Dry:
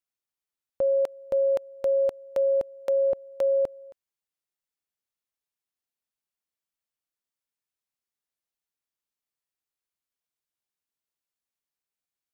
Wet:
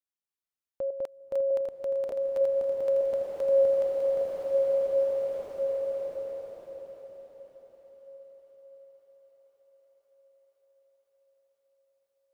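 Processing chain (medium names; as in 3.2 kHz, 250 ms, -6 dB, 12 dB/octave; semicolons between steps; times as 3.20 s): backward echo that repeats 301 ms, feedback 52%, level -2 dB; on a send: thinning echo 512 ms, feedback 79%, high-pass 210 Hz, level -23 dB; on the sum: swelling reverb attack 2340 ms, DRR -4 dB; trim -7.5 dB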